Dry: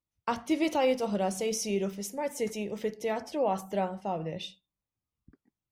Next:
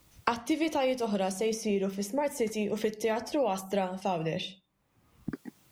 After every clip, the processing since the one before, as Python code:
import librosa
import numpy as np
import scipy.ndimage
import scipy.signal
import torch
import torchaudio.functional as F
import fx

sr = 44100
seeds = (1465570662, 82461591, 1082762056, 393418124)

y = fx.band_squash(x, sr, depth_pct=100)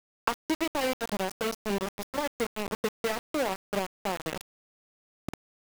y = np.where(np.abs(x) >= 10.0 ** (-26.5 / 20.0), x, 0.0)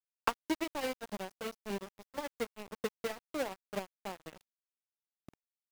y = fx.upward_expand(x, sr, threshold_db=-39.0, expansion=2.5)
y = y * librosa.db_to_amplitude(-1.5)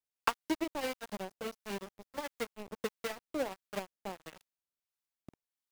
y = fx.harmonic_tremolo(x, sr, hz=1.5, depth_pct=50, crossover_hz=810.0)
y = y * librosa.db_to_amplitude(2.5)